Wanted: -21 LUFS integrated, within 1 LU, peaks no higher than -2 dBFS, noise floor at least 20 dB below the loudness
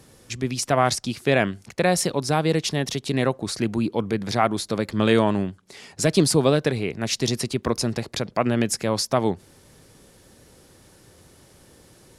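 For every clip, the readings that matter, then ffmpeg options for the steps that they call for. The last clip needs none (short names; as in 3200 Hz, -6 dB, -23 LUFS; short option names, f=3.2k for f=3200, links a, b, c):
loudness -23.0 LUFS; peak -4.5 dBFS; loudness target -21.0 LUFS
-> -af "volume=2dB"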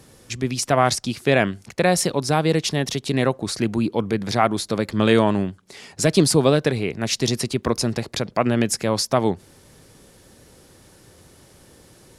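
loudness -21.0 LUFS; peak -2.5 dBFS; noise floor -52 dBFS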